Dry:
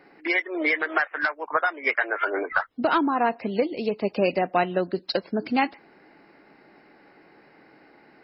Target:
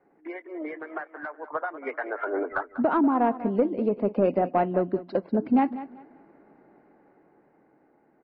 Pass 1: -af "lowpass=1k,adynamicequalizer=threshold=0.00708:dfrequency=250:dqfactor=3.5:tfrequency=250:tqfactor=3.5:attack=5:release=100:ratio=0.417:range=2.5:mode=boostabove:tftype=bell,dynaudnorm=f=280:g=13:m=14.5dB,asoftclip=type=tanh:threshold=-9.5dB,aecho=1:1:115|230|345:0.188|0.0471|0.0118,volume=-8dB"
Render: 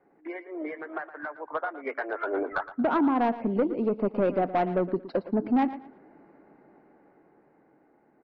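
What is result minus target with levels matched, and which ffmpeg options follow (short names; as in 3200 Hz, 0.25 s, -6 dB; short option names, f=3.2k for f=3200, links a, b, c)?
echo 78 ms early; soft clip: distortion +11 dB
-af "lowpass=1k,adynamicequalizer=threshold=0.00708:dfrequency=250:dqfactor=3.5:tfrequency=250:tqfactor=3.5:attack=5:release=100:ratio=0.417:range=2.5:mode=boostabove:tftype=bell,dynaudnorm=f=280:g=13:m=14.5dB,asoftclip=type=tanh:threshold=-2dB,aecho=1:1:193|386|579:0.188|0.0471|0.0118,volume=-8dB"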